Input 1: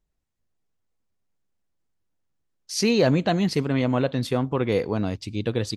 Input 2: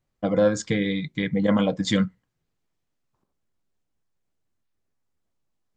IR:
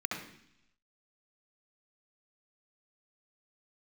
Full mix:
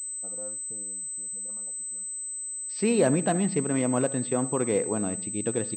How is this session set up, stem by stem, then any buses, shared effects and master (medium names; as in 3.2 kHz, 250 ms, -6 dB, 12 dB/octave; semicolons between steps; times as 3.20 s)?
-2.0 dB, 0.00 s, send -18 dB, peaking EQ 91 Hz -10.5 dB 1 oct
-18.5 dB, 0.00 s, no send, steep low-pass 1.4 kHz 72 dB/octave; bass shelf 380 Hz -9.5 dB; saturation -11.5 dBFS, distortion -28 dB; auto duck -22 dB, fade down 1.85 s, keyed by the first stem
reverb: on, RT60 0.70 s, pre-delay 64 ms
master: treble shelf 2.4 kHz -8 dB; class-D stage that switches slowly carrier 8.1 kHz